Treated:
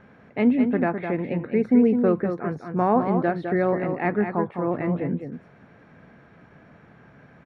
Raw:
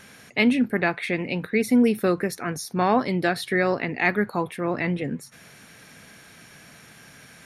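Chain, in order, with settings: low-pass 1.1 kHz 12 dB/octave; delay 208 ms -7 dB; trim +1 dB

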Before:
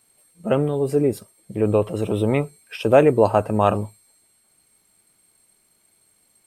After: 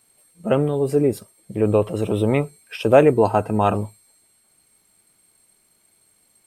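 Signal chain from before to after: 3.14–3.74 s: comb of notches 570 Hz; trim +1 dB

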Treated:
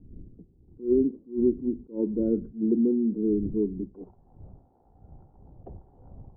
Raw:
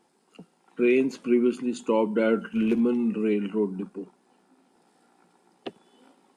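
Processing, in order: wind noise 100 Hz -42 dBFS; four-pole ladder low-pass 410 Hz, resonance 45%, from 3.93 s 870 Hz; attacks held to a fixed rise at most 210 dB/s; trim +5 dB

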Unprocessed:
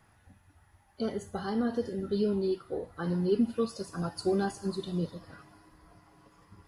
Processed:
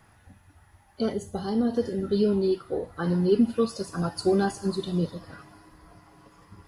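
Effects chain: 1.13–1.77 s: peaking EQ 1.5 kHz -10 dB 1.4 oct; trim +5.5 dB

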